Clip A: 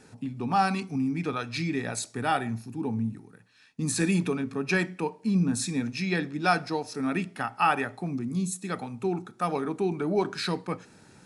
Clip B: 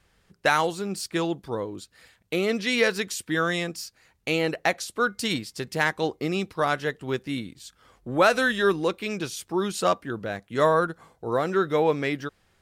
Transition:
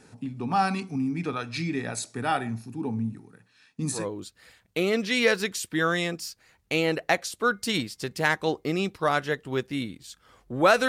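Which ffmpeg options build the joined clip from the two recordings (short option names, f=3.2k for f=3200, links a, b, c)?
-filter_complex "[0:a]apad=whole_dur=10.88,atrim=end=10.88,atrim=end=4.08,asetpts=PTS-STARTPTS[a];[1:a]atrim=start=1.44:end=8.44,asetpts=PTS-STARTPTS[b];[a][b]acrossfade=d=0.2:c1=tri:c2=tri"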